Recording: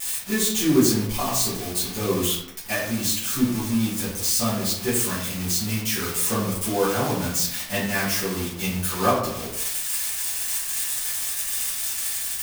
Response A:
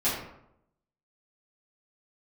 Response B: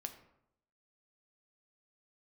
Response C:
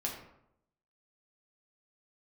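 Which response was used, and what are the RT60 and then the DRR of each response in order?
A; 0.80, 0.80, 0.80 seconds; −12.0, 6.0, −2.0 decibels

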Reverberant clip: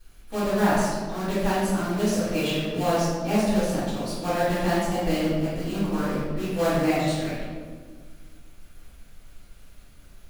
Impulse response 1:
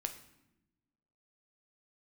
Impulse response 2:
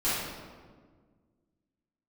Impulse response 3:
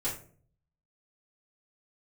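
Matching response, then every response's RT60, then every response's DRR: 2; 0.95, 1.6, 0.45 seconds; 6.0, −14.0, −10.0 decibels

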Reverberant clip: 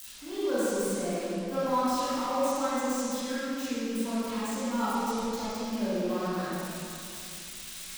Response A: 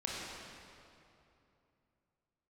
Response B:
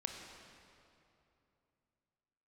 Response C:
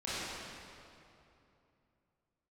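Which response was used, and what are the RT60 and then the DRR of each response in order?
C; 2.8, 2.9, 2.8 seconds; −5.0, 2.5, −12.0 decibels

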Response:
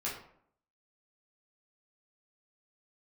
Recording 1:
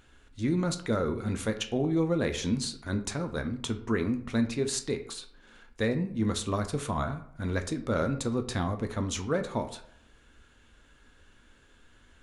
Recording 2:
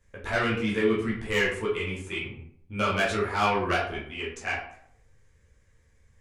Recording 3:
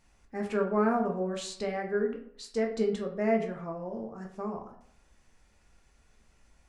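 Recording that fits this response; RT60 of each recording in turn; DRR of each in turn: 2; 0.65, 0.65, 0.65 seconds; 6.5, −7.0, 1.0 decibels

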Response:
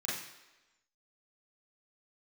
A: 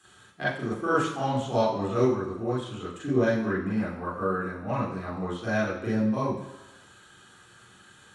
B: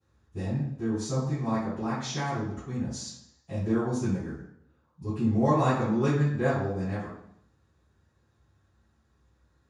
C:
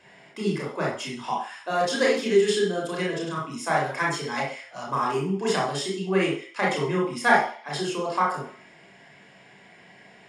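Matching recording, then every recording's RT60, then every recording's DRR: A; 1.1, 0.75, 0.45 seconds; −8.0, −18.5, −4.0 decibels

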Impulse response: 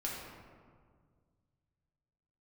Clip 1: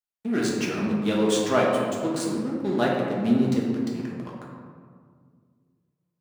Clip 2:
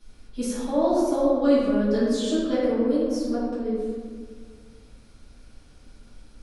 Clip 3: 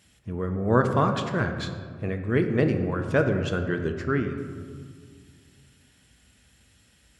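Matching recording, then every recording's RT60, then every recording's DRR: 1; 1.9, 1.8, 1.9 seconds; −4.5, −13.0, 5.0 decibels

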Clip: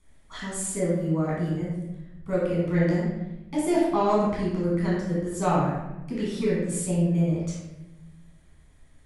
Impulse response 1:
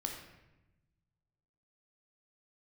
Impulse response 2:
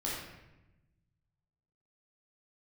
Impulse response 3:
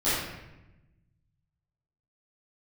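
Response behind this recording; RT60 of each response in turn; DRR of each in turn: 2; 1.0, 1.0, 1.0 seconds; 1.5, −6.5, −15.5 decibels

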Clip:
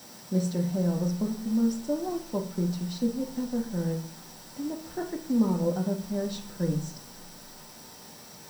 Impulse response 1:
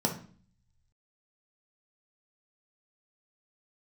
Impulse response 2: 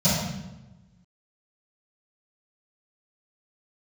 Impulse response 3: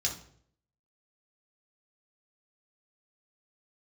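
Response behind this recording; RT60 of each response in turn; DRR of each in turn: 1; 0.45, 1.0, 0.60 seconds; 1.0, −16.5, −1.0 decibels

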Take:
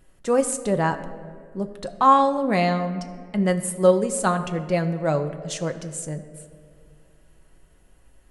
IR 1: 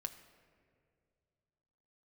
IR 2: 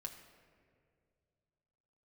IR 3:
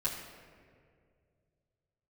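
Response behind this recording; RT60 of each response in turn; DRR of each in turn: 1; 2.2, 2.2, 2.2 seconds; 6.0, 1.5, −8.0 decibels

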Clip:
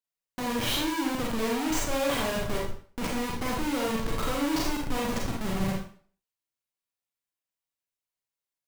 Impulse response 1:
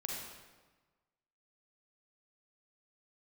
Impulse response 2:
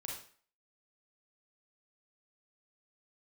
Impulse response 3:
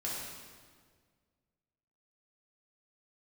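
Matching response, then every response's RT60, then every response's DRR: 2; 1.3, 0.45, 1.7 seconds; −2.0, −2.5, −6.5 decibels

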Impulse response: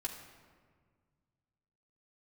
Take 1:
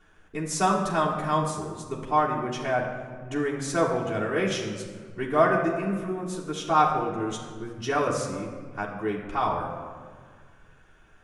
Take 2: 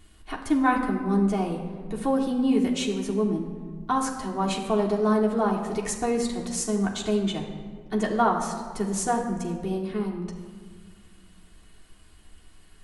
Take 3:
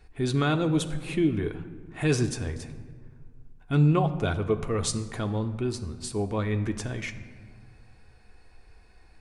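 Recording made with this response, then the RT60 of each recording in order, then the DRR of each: 2; 1.7, 1.7, 1.8 seconds; −8.0, −3.0, 6.0 decibels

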